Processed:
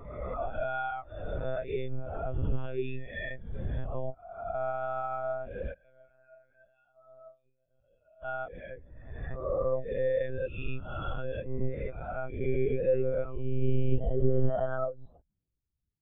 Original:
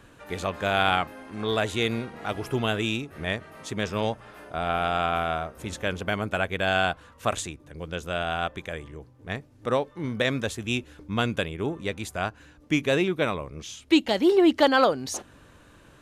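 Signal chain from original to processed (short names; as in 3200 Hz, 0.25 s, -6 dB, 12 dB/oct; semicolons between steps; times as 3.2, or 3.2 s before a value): spectral swells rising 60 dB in 2.36 s; compressor 16:1, threshold -23 dBFS, peak gain reduction 13 dB; backlash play -46 dBFS; 5.73–8.23 resonator 120 Hz, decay 0.6 s, harmonics all, mix 90%; monotone LPC vocoder at 8 kHz 130 Hz; spectral expander 2.5:1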